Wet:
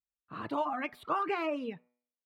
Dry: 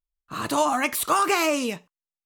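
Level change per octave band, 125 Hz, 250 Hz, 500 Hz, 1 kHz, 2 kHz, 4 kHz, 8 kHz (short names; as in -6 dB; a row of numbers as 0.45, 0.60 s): -9.5 dB, -9.5 dB, -9.5 dB, -10.0 dB, -13.0 dB, -18.0 dB, under -35 dB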